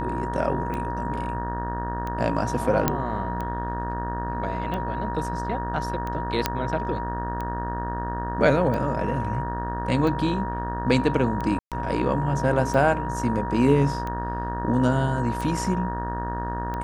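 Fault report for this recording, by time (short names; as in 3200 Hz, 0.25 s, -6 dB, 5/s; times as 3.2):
buzz 60 Hz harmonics 31 -31 dBFS
tick 45 rpm -19 dBFS
tone 950 Hz -30 dBFS
2.88 pop -5 dBFS
6.46 pop -5 dBFS
11.59–11.72 gap 0.127 s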